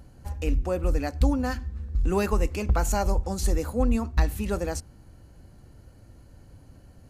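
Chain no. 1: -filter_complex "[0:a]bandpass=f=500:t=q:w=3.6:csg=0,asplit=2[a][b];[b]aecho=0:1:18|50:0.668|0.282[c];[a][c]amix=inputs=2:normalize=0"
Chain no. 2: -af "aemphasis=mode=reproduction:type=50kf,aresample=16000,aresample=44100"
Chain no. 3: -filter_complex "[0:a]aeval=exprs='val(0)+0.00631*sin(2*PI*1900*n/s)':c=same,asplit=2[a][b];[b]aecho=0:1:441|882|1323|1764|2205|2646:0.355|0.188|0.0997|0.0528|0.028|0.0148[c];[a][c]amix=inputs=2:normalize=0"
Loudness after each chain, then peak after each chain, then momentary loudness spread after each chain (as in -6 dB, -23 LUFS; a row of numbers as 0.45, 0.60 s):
-34.5, -27.5, -26.5 LUFS; -17.0, -10.5, -9.5 dBFS; 11, 7, 17 LU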